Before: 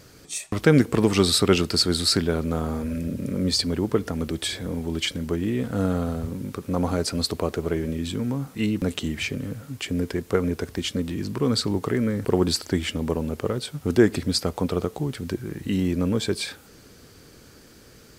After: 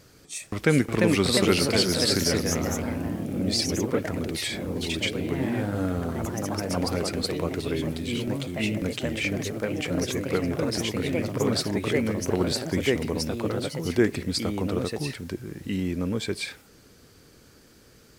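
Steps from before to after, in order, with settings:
delay with pitch and tempo change per echo 419 ms, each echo +2 semitones, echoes 3
dynamic equaliser 2,200 Hz, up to +7 dB, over −46 dBFS, Q 2.9
level −4.5 dB

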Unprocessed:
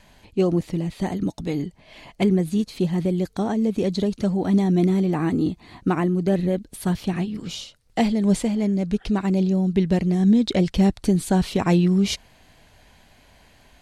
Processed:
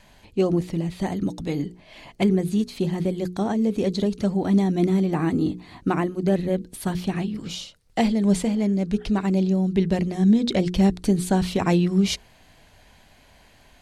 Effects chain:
mains-hum notches 60/120/180/240/300/360/420/480 Hz

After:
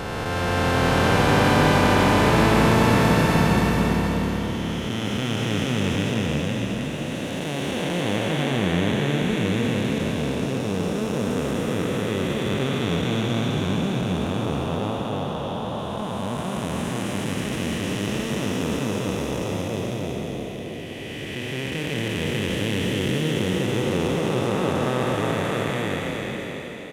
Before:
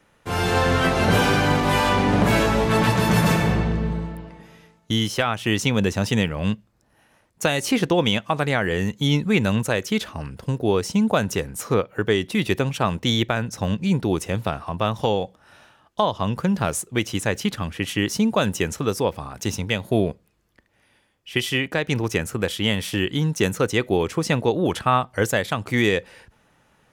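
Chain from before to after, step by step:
spectrum smeared in time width 1,220 ms
echo with shifted repeats 314 ms, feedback 50%, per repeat +35 Hz, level −3.5 dB
level +1.5 dB

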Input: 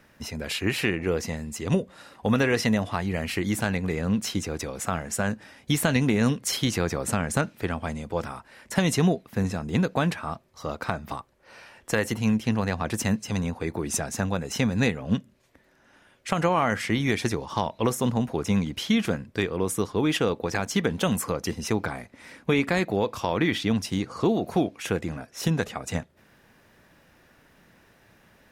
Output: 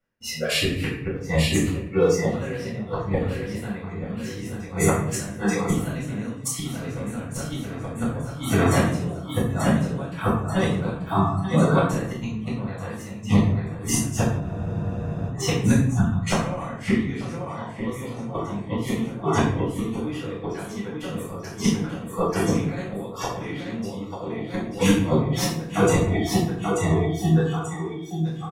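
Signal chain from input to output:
noise gate −46 dBFS, range −17 dB
repeating echo 886 ms, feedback 54%, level −3.5 dB
noise reduction from a noise print of the clip's start 22 dB
gate with flip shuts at −16 dBFS, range −25 dB
reversed playback
upward compression, threshold −36 dBFS
reversed playback
convolution reverb RT60 0.75 s, pre-delay 4 ms, DRR −9.5 dB
frozen spectrum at 0:14.43, 0.85 s
level −2 dB

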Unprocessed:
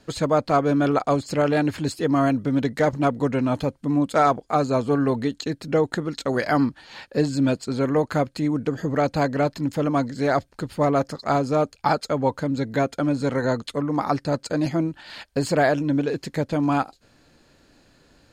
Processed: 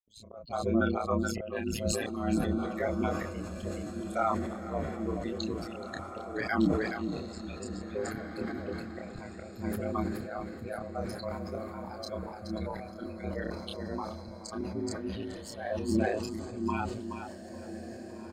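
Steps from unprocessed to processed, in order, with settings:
spectral dynamics exaggerated over time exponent 3
brickwall limiter −23 dBFS, peak gain reduction 10.5 dB
on a send: repeating echo 425 ms, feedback 16%, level −8.5 dB
on the sum: volume swells 319 ms
double-tracking delay 29 ms −4 dB
ring modulation 55 Hz
feedback delay with all-pass diffusion 1,912 ms, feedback 42%, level −10 dB
level that may fall only so fast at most 42 dB per second
level +3 dB

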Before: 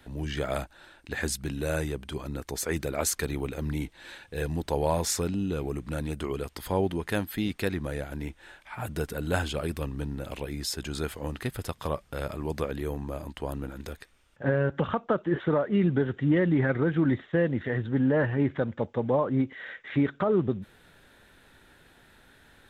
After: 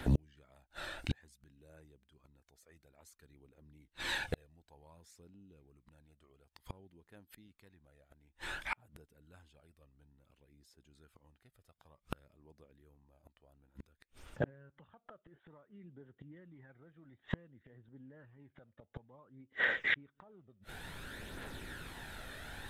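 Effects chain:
gate with flip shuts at −28 dBFS, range −42 dB
phase shifter 0.56 Hz, delay 1.7 ms, feedback 41%
level +8 dB

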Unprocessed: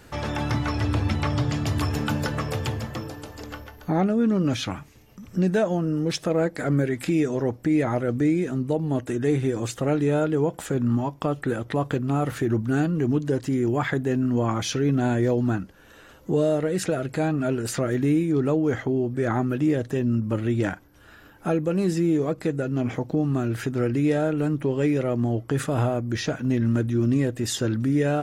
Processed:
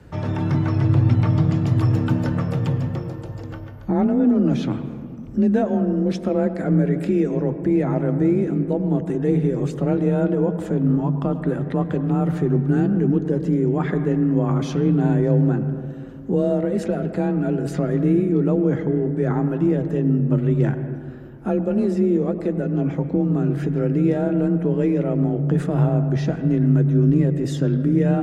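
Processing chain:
frequency shifter +27 Hz
spectral tilt −3 dB per octave
convolution reverb RT60 2.1 s, pre-delay 94 ms, DRR 9.5 dB
level −2.5 dB

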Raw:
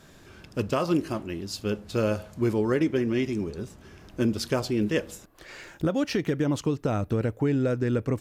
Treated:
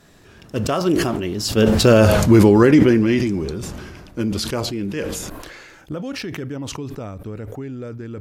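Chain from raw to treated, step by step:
source passing by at 0:02.12, 18 m/s, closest 3.2 metres
boost into a limiter +24.5 dB
level that may fall only so fast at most 30 dB per second
level −2 dB

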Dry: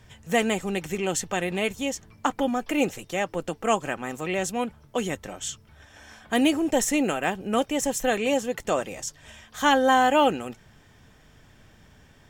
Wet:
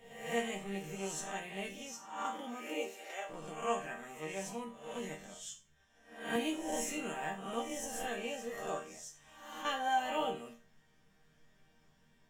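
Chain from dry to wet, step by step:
peak hold with a rise ahead of every peak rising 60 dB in 0.74 s
0:01.92–0:03.28: high-pass filter 120 Hz → 450 Hz 24 dB per octave
0:08.77–0:09.65: downward compressor 3 to 1, threshold −28 dBFS, peak gain reduction 8.5 dB
resonators tuned to a chord D#3 major, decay 0.34 s
0:05.34–0:06.36: multiband upward and downward expander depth 40%

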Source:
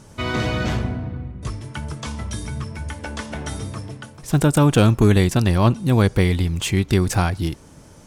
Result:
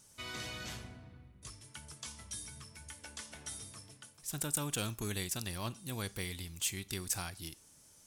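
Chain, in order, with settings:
first-order pre-emphasis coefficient 0.9
four-comb reverb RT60 0.31 s, combs from 27 ms, DRR 19 dB
level −5.5 dB

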